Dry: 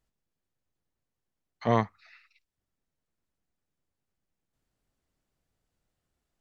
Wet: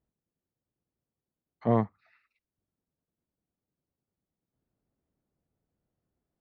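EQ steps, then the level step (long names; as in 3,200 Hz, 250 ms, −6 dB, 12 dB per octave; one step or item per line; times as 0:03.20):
resonant band-pass 320 Hz, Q 0.53
low-shelf EQ 210 Hz +6.5 dB
0.0 dB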